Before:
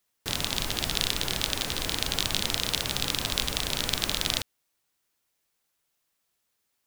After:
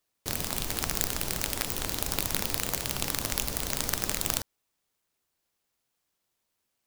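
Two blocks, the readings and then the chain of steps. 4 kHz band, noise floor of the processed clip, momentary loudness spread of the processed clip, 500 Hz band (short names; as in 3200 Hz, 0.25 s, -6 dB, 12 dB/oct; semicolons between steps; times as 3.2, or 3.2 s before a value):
-8.5 dB, -81 dBFS, 2 LU, -1.0 dB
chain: noise-modulated delay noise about 4500 Hz, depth 0.15 ms; gain -1.5 dB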